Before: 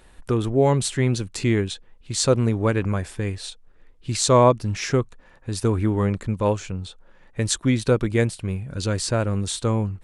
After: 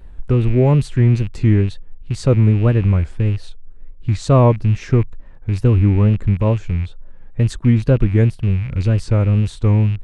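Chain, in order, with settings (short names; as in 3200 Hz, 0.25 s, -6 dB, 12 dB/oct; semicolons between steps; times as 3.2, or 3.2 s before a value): rattling part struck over -32 dBFS, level -22 dBFS; RIAA curve playback; wow and flutter 120 cents; gain -2 dB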